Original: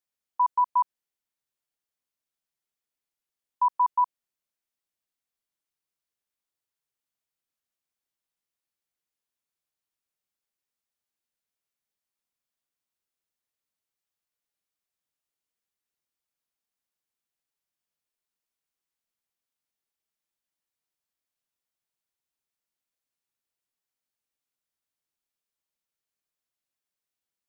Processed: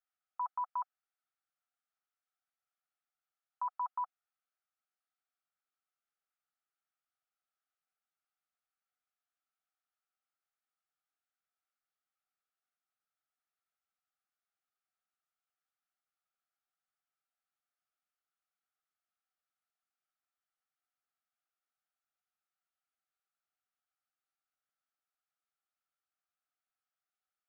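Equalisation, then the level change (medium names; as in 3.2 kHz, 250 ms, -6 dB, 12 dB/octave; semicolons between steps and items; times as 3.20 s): two resonant band-passes 980 Hz, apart 0.76 oct; tilt shelf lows -9 dB; +5.5 dB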